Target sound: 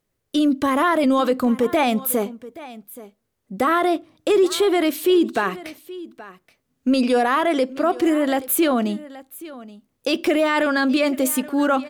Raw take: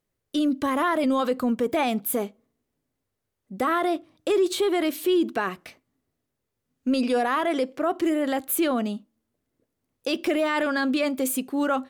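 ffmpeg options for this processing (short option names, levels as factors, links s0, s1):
-af "aecho=1:1:826:0.126,volume=1.78"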